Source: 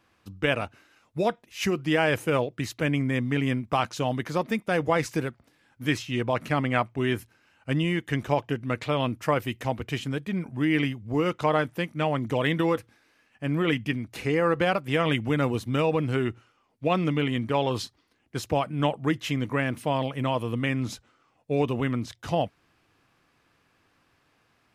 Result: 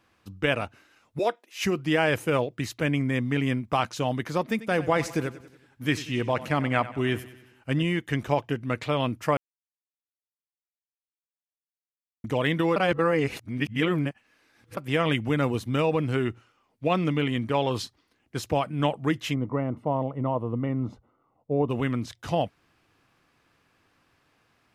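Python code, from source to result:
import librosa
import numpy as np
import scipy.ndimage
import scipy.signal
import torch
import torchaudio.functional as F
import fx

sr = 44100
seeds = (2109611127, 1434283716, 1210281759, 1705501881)

y = fx.highpass(x, sr, hz=300.0, slope=24, at=(1.19, 1.64))
y = fx.echo_feedback(y, sr, ms=93, feedback_pct=53, wet_db=-16, at=(4.46, 7.83))
y = fx.savgol(y, sr, points=65, at=(19.33, 21.69), fade=0.02)
y = fx.edit(y, sr, fx.silence(start_s=9.37, length_s=2.87),
    fx.reverse_span(start_s=12.76, length_s=2.01), tone=tone)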